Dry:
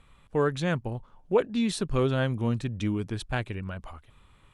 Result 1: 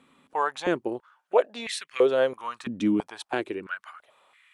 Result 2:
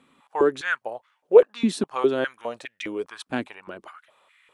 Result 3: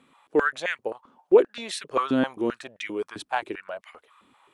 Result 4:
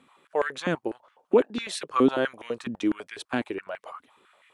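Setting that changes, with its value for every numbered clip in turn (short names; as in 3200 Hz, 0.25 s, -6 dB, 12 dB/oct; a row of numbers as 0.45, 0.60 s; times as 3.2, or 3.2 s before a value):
stepped high-pass, rate: 3, 4.9, 7.6, 12 Hz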